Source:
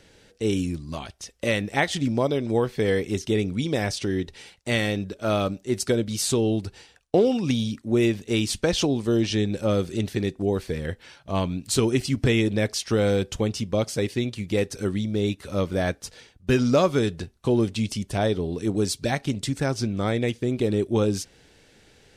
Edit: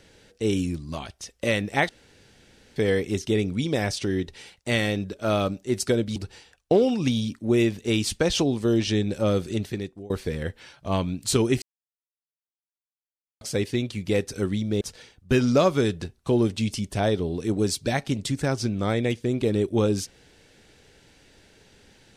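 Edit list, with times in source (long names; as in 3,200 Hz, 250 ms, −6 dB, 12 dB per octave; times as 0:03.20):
0:01.89–0:02.76: fill with room tone
0:06.16–0:06.59: remove
0:09.93–0:10.53: fade out, to −23.5 dB
0:12.05–0:13.84: silence
0:15.24–0:15.99: remove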